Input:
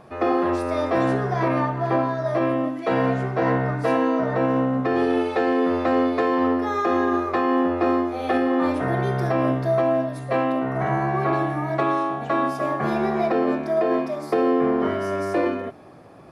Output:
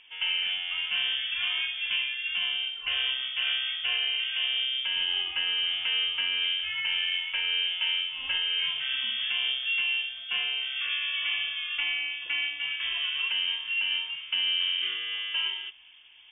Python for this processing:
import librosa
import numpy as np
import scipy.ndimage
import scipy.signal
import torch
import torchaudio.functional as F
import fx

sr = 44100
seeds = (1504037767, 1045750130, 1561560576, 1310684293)

y = fx.freq_invert(x, sr, carrier_hz=3400)
y = y * 10.0 ** (-8.0 / 20.0)